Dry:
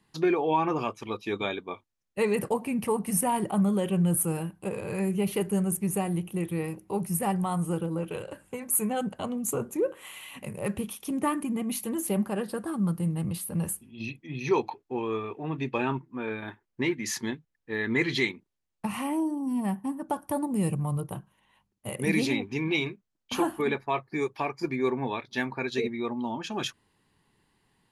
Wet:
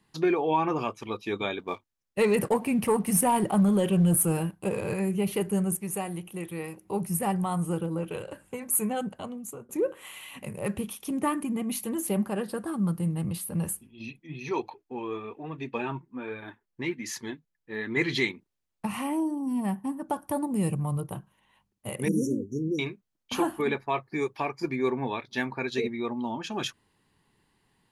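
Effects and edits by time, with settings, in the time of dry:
0:01.59–0:04.94: leveller curve on the samples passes 1
0:05.77–0:06.85: low-shelf EQ 350 Hz −9 dB
0:08.87–0:09.69: fade out, to −19 dB
0:13.87–0:17.97: flanger 1.2 Hz, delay 1.6 ms, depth 5 ms, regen +44%
0:22.08–0:22.79: linear-phase brick-wall band-stop 580–5,500 Hz

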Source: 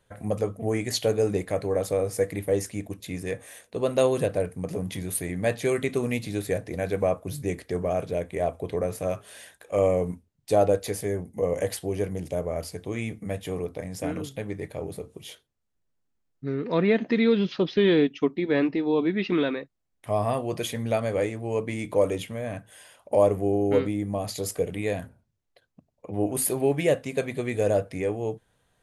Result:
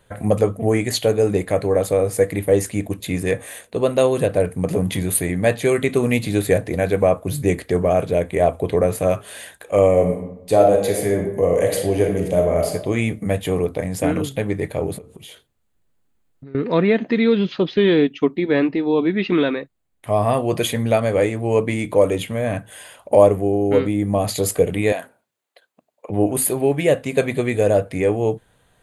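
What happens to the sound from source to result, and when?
0:09.90–0:12.69: thrown reverb, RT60 0.83 s, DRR 2.5 dB
0:14.98–0:16.55: downward compressor 8 to 1, threshold −46 dBFS
0:24.92–0:26.10: high-pass filter 510 Hz
whole clip: parametric band 5,500 Hz −8.5 dB 0.32 octaves; speech leveller within 3 dB 0.5 s; level +7.5 dB

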